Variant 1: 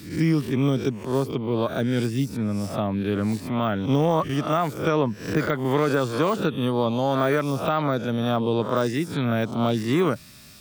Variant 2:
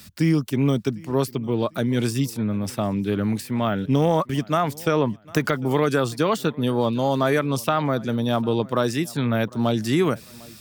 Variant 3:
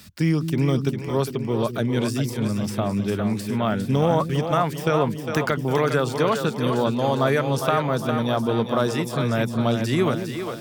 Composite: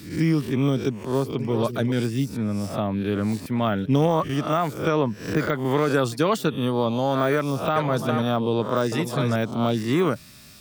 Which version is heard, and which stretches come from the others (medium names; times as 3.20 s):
1
1.39–1.92 s: from 3
3.46–4.07 s: from 2
5.94–6.50 s: from 2
7.76–8.22 s: from 3
8.92–9.36 s: from 3